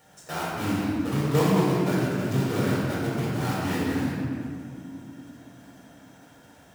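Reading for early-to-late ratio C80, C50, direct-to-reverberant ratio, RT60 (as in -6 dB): -1.0 dB, -3.5 dB, -8.0 dB, 2.6 s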